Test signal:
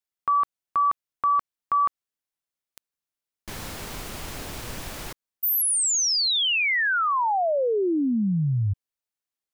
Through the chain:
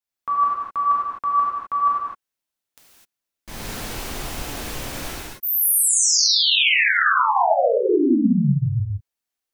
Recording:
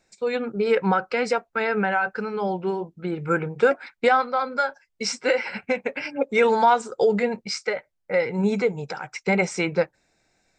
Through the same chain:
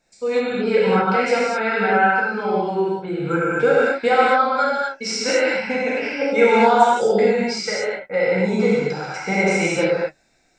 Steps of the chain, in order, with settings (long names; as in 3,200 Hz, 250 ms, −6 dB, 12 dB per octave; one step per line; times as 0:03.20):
reverb whose tail is shaped and stops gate 280 ms flat, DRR −8 dB
level −3.5 dB